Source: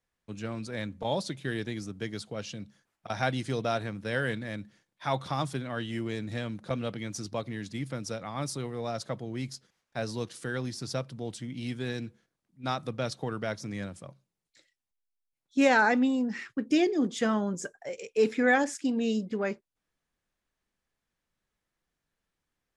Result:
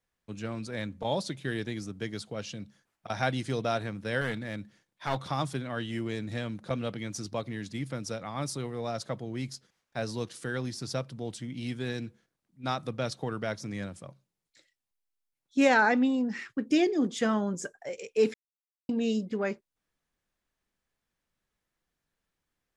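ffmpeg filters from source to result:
ffmpeg -i in.wav -filter_complex "[0:a]asettb=1/sr,asplit=3[link_01][link_02][link_03];[link_01]atrim=end=4.214[link_04];[link_02]atrim=start=4.21:end=5.23,asetpts=PTS-STARTPTS,afade=type=in:duration=0.004:curve=qsin,afade=type=out:start_time=1.016:duration=0.004:curve=qsin,aeval=exprs='clip(val(0),-1,0.0299)':channel_layout=same[link_05];[link_03]atrim=start=5.226[link_06];[link_04][link_05]acrossfade=duration=0.004:curve1=hsin:curve2=qsin[link_07];[link_07][link_06]acrossfade=duration=0.004:curve1=qsin:curve2=hsin,asettb=1/sr,asplit=3[link_08][link_09][link_10];[link_08]atrim=end=15.744[link_11];[link_09]atrim=start=15.74:end=16.26,asetpts=PTS-STARTPTS,afade=type=in:duration=0.004:curve=qsin,afade=type=out:start_time=0.516:duration=0.004:curve=qsin,lowpass=6200[link_12];[link_10]atrim=start=16.256[link_13];[link_11][link_12]acrossfade=duration=0.004:curve1=hsin:curve2=qsin[link_14];[link_14][link_13]acrossfade=duration=0.004:curve1=qsin:curve2=hsin,asplit=3[link_15][link_16][link_17];[link_15]atrim=end=18.34,asetpts=PTS-STARTPTS,afade=type=out:start_time=18.336:duration=0.004:curve=hsin[link_18];[link_16]atrim=start=18.34:end=18.89,asetpts=PTS-STARTPTS,volume=0[link_19];[link_17]atrim=start=18.89,asetpts=PTS-STARTPTS,afade=type=in:duration=0.004:curve=hsin[link_20];[link_18][link_19][link_20]concat=n=3:v=0:a=1" out.wav

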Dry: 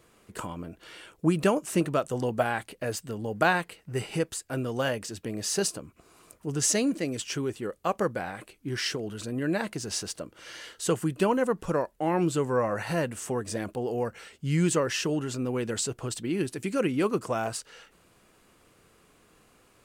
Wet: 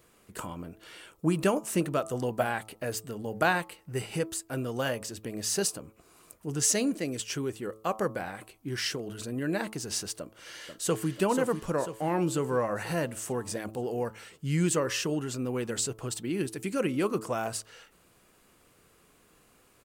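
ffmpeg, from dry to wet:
ffmpeg -i in.wav -filter_complex "[0:a]asplit=2[link_01][link_02];[link_02]afade=type=in:start_time=10.19:duration=0.01,afade=type=out:start_time=11.1:duration=0.01,aecho=0:1:490|980|1470|1960|2450|2940|3430|3920:0.421697|0.253018|0.151811|0.0910864|0.0546519|0.0327911|0.0196747|0.0118048[link_03];[link_01][link_03]amix=inputs=2:normalize=0,highshelf=frequency=12000:gain=10,bandreject=frequency=109.2:width_type=h:width=4,bandreject=frequency=218.4:width_type=h:width=4,bandreject=frequency=327.6:width_type=h:width=4,bandreject=frequency=436.8:width_type=h:width=4,bandreject=frequency=546:width_type=h:width=4,bandreject=frequency=655.2:width_type=h:width=4,bandreject=frequency=764.4:width_type=h:width=4,bandreject=frequency=873.6:width_type=h:width=4,bandreject=frequency=982.8:width_type=h:width=4,bandreject=frequency=1092:width_type=h:width=4,bandreject=frequency=1201.2:width_type=h:width=4,bandreject=frequency=1310.4:width_type=h:width=4,volume=-2dB" out.wav

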